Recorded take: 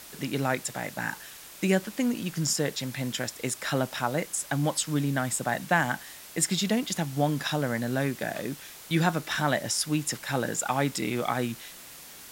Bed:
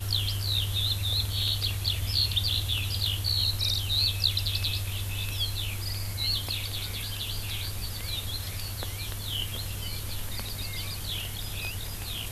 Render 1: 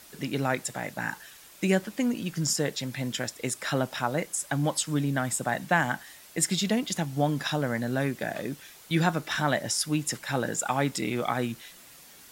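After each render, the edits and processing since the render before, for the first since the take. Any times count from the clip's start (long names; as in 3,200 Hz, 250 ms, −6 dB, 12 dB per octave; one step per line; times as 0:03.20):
broadband denoise 6 dB, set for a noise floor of −47 dBFS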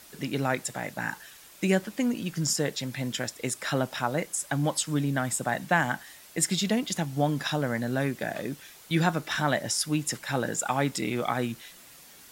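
no processing that can be heard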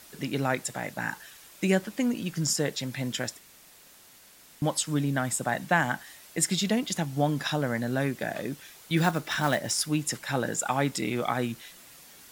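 0:03.39–0:04.62: fill with room tone
0:08.97–0:09.89: one scale factor per block 5 bits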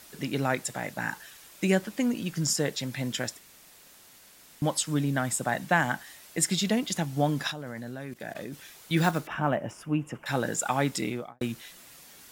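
0:07.51–0:08.54: output level in coarse steps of 19 dB
0:09.27–0:10.26: drawn EQ curve 1,200 Hz 0 dB, 2,000 Hz −10 dB, 2,800 Hz −3 dB, 4,000 Hz −29 dB, 5,800 Hz −21 dB
0:10.99–0:11.41: fade out and dull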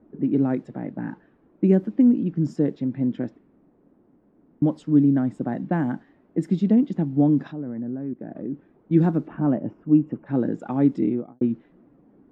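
low-pass that shuts in the quiet parts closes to 1,000 Hz, open at −21 dBFS
drawn EQ curve 100 Hz 0 dB, 290 Hz +13 dB, 580 Hz −2 dB, 10,000 Hz −30 dB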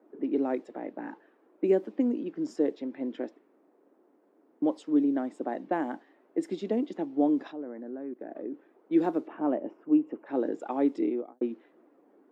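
high-pass filter 340 Hz 24 dB per octave
dynamic equaliser 1,500 Hz, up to −5 dB, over −53 dBFS, Q 2.4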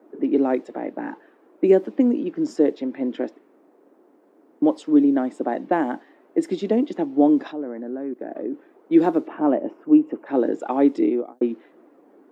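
level +8.5 dB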